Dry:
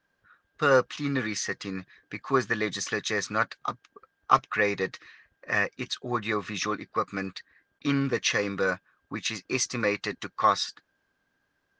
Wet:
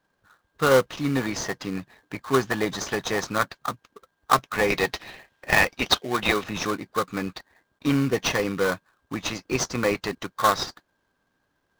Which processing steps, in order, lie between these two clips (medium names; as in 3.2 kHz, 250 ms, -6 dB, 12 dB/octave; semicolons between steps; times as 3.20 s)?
4.70–6.44 s: frequency weighting D; in parallel at -4 dB: sample-rate reducer 2.6 kHz, jitter 20%